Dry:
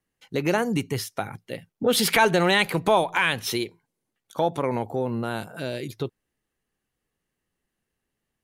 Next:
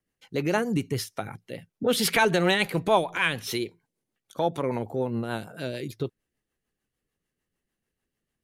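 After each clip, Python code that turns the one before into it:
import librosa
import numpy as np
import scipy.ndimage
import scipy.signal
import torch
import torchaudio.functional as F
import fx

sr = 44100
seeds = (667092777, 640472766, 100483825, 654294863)

y = fx.rotary(x, sr, hz=6.7)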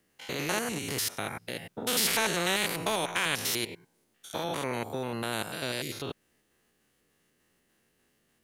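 y = fx.spec_steps(x, sr, hold_ms=100)
y = fx.low_shelf(y, sr, hz=110.0, db=-12.0)
y = fx.spectral_comp(y, sr, ratio=2.0)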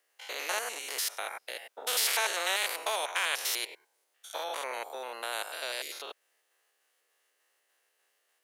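y = scipy.signal.sosfilt(scipy.signal.butter(4, 530.0, 'highpass', fs=sr, output='sos'), x)
y = y * librosa.db_to_amplitude(-1.0)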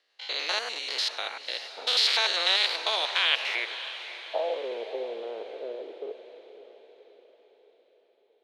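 y = fx.low_shelf(x, sr, hz=280.0, db=5.0)
y = fx.filter_sweep_lowpass(y, sr, from_hz=4100.0, to_hz=440.0, start_s=3.14, end_s=4.65, q=4.3)
y = fx.echo_diffused(y, sr, ms=569, feedback_pct=49, wet_db=-12)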